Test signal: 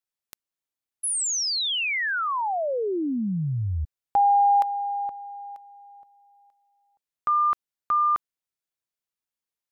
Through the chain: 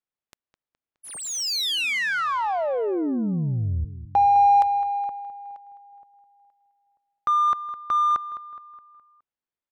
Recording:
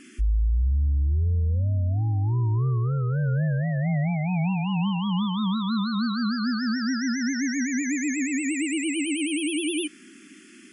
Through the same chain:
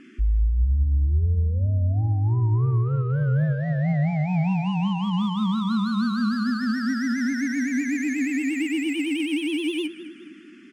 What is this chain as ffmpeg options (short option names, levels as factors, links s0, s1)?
-af "aecho=1:1:209|418|627|836|1045:0.224|0.11|0.0538|0.0263|0.0129,adynamicsmooth=sensitivity=3.5:basefreq=2800,volume=1.19"